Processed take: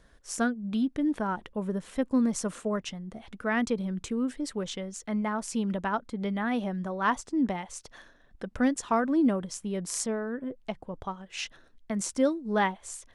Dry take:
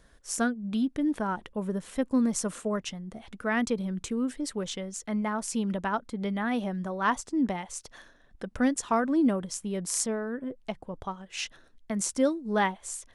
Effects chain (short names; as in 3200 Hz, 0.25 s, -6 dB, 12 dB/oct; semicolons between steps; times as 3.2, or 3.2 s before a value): high shelf 7800 Hz -7 dB